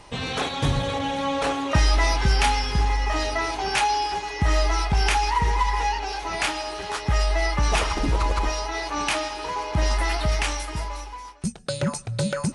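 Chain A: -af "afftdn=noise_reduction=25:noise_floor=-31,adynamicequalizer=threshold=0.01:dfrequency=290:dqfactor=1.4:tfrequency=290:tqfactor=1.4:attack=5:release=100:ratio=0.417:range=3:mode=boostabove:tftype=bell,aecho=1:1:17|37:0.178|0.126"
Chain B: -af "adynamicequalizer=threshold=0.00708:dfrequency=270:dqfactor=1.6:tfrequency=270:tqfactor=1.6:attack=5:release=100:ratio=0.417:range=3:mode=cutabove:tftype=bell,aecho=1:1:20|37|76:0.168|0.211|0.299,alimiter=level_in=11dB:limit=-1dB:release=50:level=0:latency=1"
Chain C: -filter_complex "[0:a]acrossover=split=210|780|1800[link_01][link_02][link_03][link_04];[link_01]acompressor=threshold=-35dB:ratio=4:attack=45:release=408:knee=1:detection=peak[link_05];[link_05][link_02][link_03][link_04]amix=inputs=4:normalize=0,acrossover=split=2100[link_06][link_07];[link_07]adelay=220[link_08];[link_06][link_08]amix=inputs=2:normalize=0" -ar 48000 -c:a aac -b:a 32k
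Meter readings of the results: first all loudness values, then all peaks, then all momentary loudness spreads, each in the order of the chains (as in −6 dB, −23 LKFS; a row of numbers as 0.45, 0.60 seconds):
−23.5, −13.0, −25.5 LKFS; −7.0, −1.0, −10.0 dBFS; 9, 7, 6 LU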